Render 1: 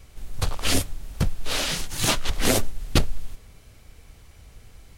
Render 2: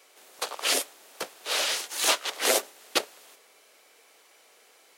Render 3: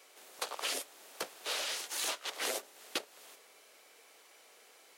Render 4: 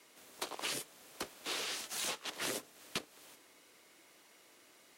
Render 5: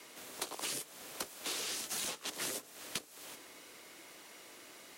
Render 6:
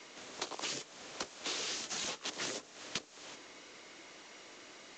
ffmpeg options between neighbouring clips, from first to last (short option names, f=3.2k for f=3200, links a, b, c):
-af "highpass=f=410:w=0.5412,highpass=f=410:w=1.3066"
-af "acompressor=threshold=-32dB:ratio=5,volume=-2dB"
-af "afreqshift=-130,volume=-2.5dB"
-filter_complex "[0:a]acrossover=split=410|5400[a][b][c];[a]acompressor=threshold=-60dB:ratio=4[d];[b]acompressor=threshold=-52dB:ratio=4[e];[c]acompressor=threshold=-48dB:ratio=4[f];[d][e][f]amix=inputs=3:normalize=0,volume=8.5dB"
-af "volume=1.5dB" -ar 16000 -c:a pcm_mulaw